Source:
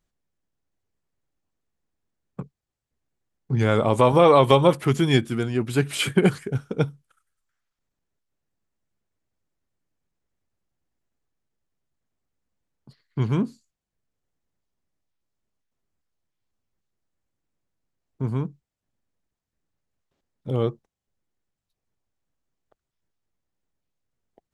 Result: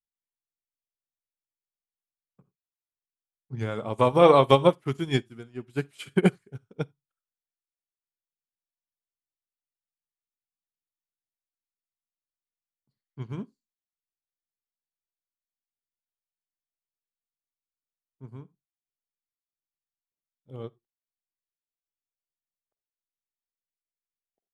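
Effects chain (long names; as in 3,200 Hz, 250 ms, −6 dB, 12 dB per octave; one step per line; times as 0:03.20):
on a send at −13 dB: convolution reverb, pre-delay 44 ms
on the sum: expander for the loud parts 2.5 to 1, over −31 dBFS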